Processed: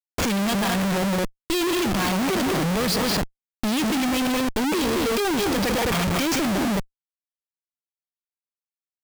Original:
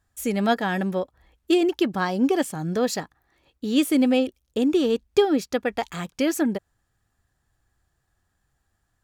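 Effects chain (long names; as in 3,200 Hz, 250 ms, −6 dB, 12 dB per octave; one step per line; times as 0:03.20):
loudspeaker in its box 110–6,300 Hz, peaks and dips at 200 Hz +8 dB, 1,100 Hz +5 dB, 2,300 Hz +9 dB, 3,300 Hz +6 dB, 4,800 Hz +10 dB
downward expander −44 dBFS
bit-depth reduction 8 bits, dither none
on a send: loudspeakers that aren't time-aligned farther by 54 metres −12 dB, 73 metres −9 dB
on the sum: comparator with hysteresis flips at −36.5 dBFS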